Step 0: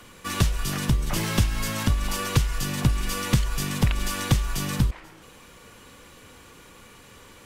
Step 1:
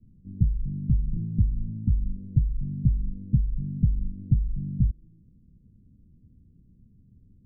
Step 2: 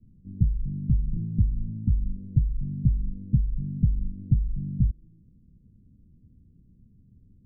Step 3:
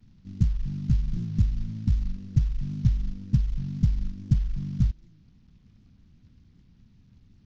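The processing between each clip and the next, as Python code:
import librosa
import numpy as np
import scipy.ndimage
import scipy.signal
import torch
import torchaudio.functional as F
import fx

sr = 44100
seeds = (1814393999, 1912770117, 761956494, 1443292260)

y1 = scipy.signal.sosfilt(scipy.signal.cheby2(4, 70, 940.0, 'lowpass', fs=sr, output='sos'), x)
y2 = y1
y3 = fx.cvsd(y2, sr, bps=32000)
y3 = fx.record_warp(y3, sr, rpm=78.0, depth_cents=100.0)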